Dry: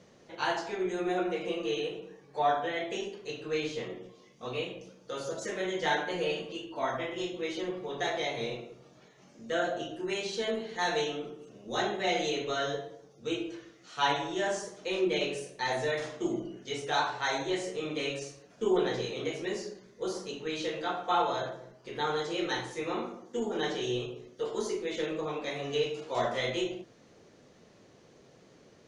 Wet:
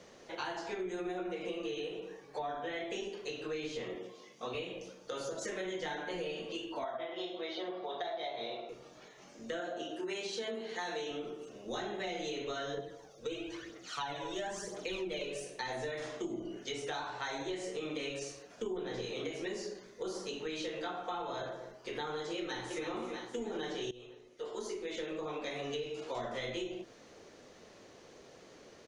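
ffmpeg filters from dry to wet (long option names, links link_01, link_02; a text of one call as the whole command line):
ffmpeg -i in.wav -filter_complex "[0:a]asettb=1/sr,asplit=3[link_01][link_02][link_03];[link_01]atrim=end=3.954[link_04];[link_02]atrim=start=3.95:end=4.55,asetpts=PTS-STARTPTS,afade=type=in:duration=0.004:curve=qsin,afade=type=out:start_time=0.596:duration=0.004:curve=qsin,highpass=120[link_05];[link_03]atrim=start=4.546[link_06];[link_04][link_05]acrossfade=duration=0.004:curve1=hsin:curve2=qsin[link_07];[link_07][link_06]acrossfade=duration=0.004:curve1=qsin:curve2=hsin,asettb=1/sr,asplit=3[link_08][link_09][link_10];[link_08]atrim=end=6.844[link_11];[link_09]atrim=start=6.84:end=8.69,asetpts=PTS-STARTPTS,afade=type=in:duration=0.004:curve=qsin,afade=type=out:start_time=1.846:duration=0.004:curve=qsin,highpass=280,equalizer=frequency=280:width_type=q:width=4:gain=-7,equalizer=frequency=470:width_type=q:width=4:gain=-6,equalizer=frequency=670:width_type=q:width=4:gain=9,equalizer=frequency=1800:width_type=q:width=4:gain=-3,equalizer=frequency=2600:width_type=q:width=4:gain=-8,equalizer=frequency=3700:width_type=q:width=4:gain=4,lowpass=frequency=4400:width=0.5412,lowpass=frequency=4400:width=1.3066[link_12];[link_10]atrim=start=8.686[link_13];[link_11][link_12]acrossfade=duration=0.004:curve1=hsin:curve2=qsin[link_14];[link_14][link_13]acrossfade=duration=0.004:curve1=qsin:curve2=hsin,asettb=1/sr,asplit=3[link_15][link_16][link_17];[link_15]atrim=end=9.604[link_18];[link_16]atrim=start=9.6:end=11.11,asetpts=PTS-STARTPTS,afade=type=in:duration=0.004:curve=qsin,afade=type=out:start_time=1.506:duration=0.004:curve=qsin,highpass=200[link_19];[link_17]atrim=start=11.106[link_20];[link_18][link_19]acrossfade=duration=0.004:curve1=hsin:curve2=qsin[link_21];[link_21][link_20]acrossfade=duration=0.004:curve1=qsin:curve2=hsin,asettb=1/sr,asplit=3[link_22][link_23][link_24];[link_22]atrim=end=12.774[link_25];[link_23]atrim=start=12.77:end=15.44,asetpts=PTS-STARTPTS,afade=type=in:duration=0.004:curve=qsin,afade=type=out:start_time=2.666:duration=0.004:curve=qsin,aphaser=in_gain=1:out_gain=1:delay=2.1:decay=0.54:speed=1:type=triangular[link_26];[link_24]atrim=start=15.436[link_27];[link_25][link_26]acrossfade=duration=0.004:curve1=hsin:curve2=qsin[link_28];[link_28][link_27]acrossfade=duration=0.004:curve1=qsin:curve2=hsin,asplit=2[link_29][link_30];[link_30]afade=type=in:start_time=22.38:duration=0.01,afade=type=out:start_time=22.86:duration=0.01,aecho=0:1:320|640|960|1280|1600|1920|2240:0.316228|0.189737|0.113842|0.0683052|0.0409831|0.0245899|0.0147539[link_31];[link_29][link_31]amix=inputs=2:normalize=0,asplit=2[link_32][link_33];[link_32]atrim=end=23.91,asetpts=PTS-STARTPTS,afade=type=out:start_time=23.906:duration=0.004:curve=hsin:silence=0.105925[link_34];[link_33]atrim=start=23.91,asetpts=PTS-STARTPTS,afade=type=in:duration=1.71:silence=0.105925[link_35];[link_34][link_35]concat=n=2:v=0:a=1,acrossover=split=290[link_36][link_37];[link_37]acompressor=threshold=-42dB:ratio=3[link_38];[link_36][link_38]amix=inputs=2:normalize=0,equalizer=frequency=140:width=0.78:gain=-9.5,acompressor=threshold=-39dB:ratio=6,volume=4.5dB" out.wav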